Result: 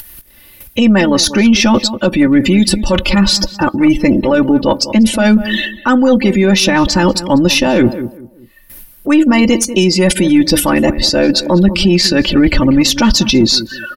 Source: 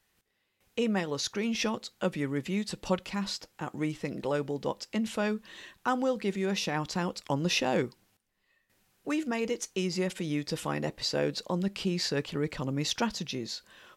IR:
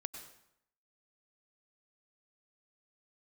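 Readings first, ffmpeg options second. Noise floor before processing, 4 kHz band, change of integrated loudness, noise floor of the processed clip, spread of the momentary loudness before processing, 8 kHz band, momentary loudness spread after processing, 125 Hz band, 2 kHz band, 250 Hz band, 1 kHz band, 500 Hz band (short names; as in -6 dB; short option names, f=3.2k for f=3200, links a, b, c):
-76 dBFS, +21.0 dB, +20.5 dB, -42 dBFS, 6 LU, +20.5 dB, 4 LU, +18.0 dB, +19.5 dB, +23.0 dB, +16.5 dB, +17.5 dB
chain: -filter_complex "[0:a]aecho=1:1:3.4:0.76,afftdn=nr=27:nf=-44,areverse,acompressor=threshold=-38dB:ratio=12,areverse,asplit=2[a][b];[b]adelay=192,lowpass=f=1.2k:p=1,volume=-13dB,asplit=2[c][d];[d]adelay=192,lowpass=f=1.2k:p=1,volume=0.23,asplit=2[e][f];[f]adelay=192,lowpass=f=1.2k:p=1,volume=0.23[g];[a][c][e][g]amix=inputs=4:normalize=0,aexciter=amount=11.3:drive=2.7:freq=10k,aemphasis=mode=reproduction:type=bsi,acompressor=mode=upward:threshold=-54dB:ratio=2.5,crystalizer=i=4:c=0,aeval=exprs='0.0668*(cos(1*acos(clip(val(0)/0.0668,-1,1)))-cos(1*PI/2))+0.00841*(cos(2*acos(clip(val(0)/0.0668,-1,1)))-cos(2*PI/2))+0.00119*(cos(5*acos(clip(val(0)/0.0668,-1,1)))-cos(5*PI/2))':c=same,alimiter=level_in=29dB:limit=-1dB:release=50:level=0:latency=1,volume=-1dB"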